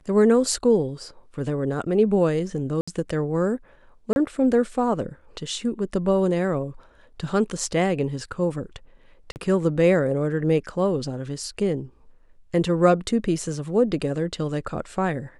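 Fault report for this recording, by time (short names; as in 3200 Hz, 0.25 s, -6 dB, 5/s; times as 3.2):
2.81–2.88 gap 65 ms
4.13–4.16 gap 31 ms
9.32–9.36 gap 39 ms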